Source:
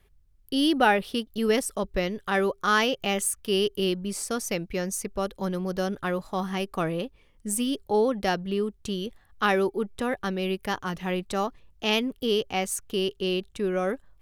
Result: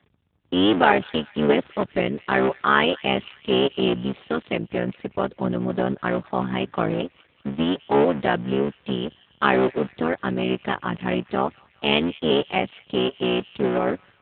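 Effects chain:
sub-harmonics by changed cycles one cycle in 3, muted
delay with a high-pass on its return 198 ms, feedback 55%, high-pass 1,900 Hz, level −19 dB
level +6.5 dB
AMR narrowband 10.2 kbit/s 8,000 Hz

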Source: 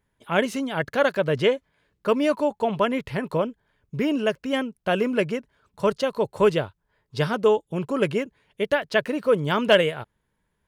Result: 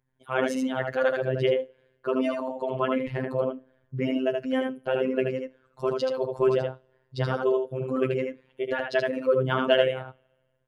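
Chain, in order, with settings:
spectral envelope exaggerated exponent 1.5
single-tap delay 78 ms −4 dB
coupled-rooms reverb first 0.31 s, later 1.5 s, from −22 dB, DRR 16.5 dB
phases set to zero 130 Hz
level −1.5 dB

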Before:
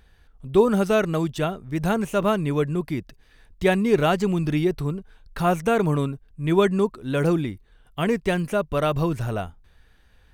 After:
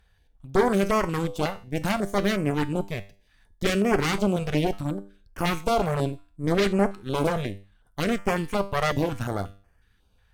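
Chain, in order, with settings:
harmonic generator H 8 −9 dB, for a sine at −5.5 dBFS
tuned comb filter 99 Hz, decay 0.41 s, harmonics all, mix 60%
notch on a step sequencer 5.5 Hz 300–3,800 Hz

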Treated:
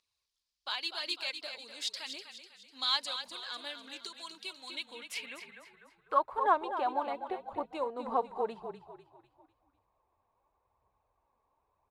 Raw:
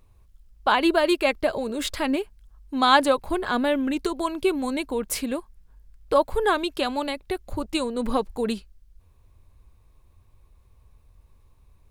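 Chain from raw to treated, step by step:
echo with shifted repeats 249 ms, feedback 47%, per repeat −32 Hz, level −9 dB
band-pass filter sweep 4,700 Hz → 820 Hz, 0:04.50–0:06.64
phase shifter 0.92 Hz, delay 4.6 ms, feedback 35%
level −1 dB

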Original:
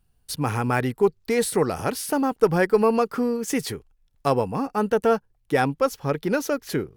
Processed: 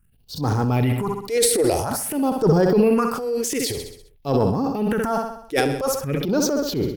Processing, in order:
all-pass phaser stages 4, 0.5 Hz, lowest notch 160–2,400 Hz
repeating echo 65 ms, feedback 52%, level −11.5 dB
transient designer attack −9 dB, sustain +8 dB
level +4 dB

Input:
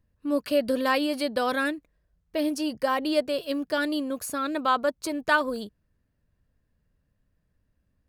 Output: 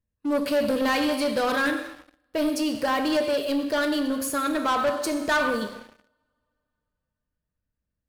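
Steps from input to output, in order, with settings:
coupled-rooms reverb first 0.94 s, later 3.2 s, from −24 dB, DRR 4.5 dB
leveller curve on the samples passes 3
level −7.5 dB

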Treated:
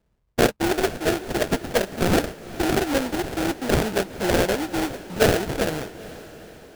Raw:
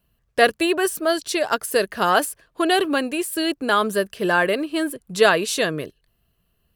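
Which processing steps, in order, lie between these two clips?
sample-rate reduction 1,100 Hz, jitter 20%
feedback delay with all-pass diffusion 463 ms, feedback 54%, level −16 dB
level −2 dB

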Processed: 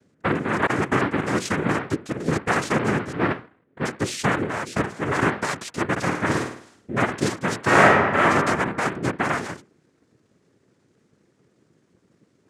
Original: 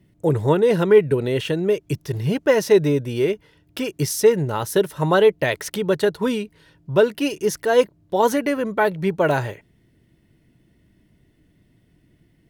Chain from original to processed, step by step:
0:03.12–0:03.85: elliptic low-pass filter 960 Hz
mains-hum notches 60/120/180/240/300/360/420/480 Hz
0:00.66–0:01.17: noise gate with hold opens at −10 dBFS
parametric band 530 Hz +4 dB 1.4 octaves
brickwall limiter −12 dBFS, peak gain reduction 11 dB
cochlear-implant simulation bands 3
0:05.91–0:07.04: flutter between parallel walls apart 9 metres, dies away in 0.55 s
0:07.62–0:08.22: thrown reverb, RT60 1.4 s, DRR −8.5 dB
level −2.5 dB

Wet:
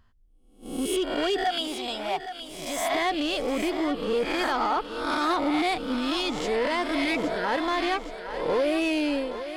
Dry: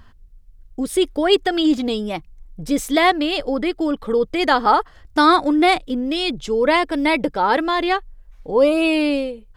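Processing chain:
peak hold with a rise ahead of every peak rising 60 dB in 0.69 s
noise gate −34 dBFS, range −11 dB
0:01.44–0:02.95: low shelf with overshoot 540 Hz −10 dB, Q 3
0:06.95–0:07.42: healed spectral selection 520–1,400 Hz before
brickwall limiter −9 dBFS, peak gain reduction 9 dB
soft clipping −12.5 dBFS, distortion −18 dB
feedback echo with a high-pass in the loop 818 ms, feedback 59%, high-pass 290 Hz, level −10 dB
level −6 dB

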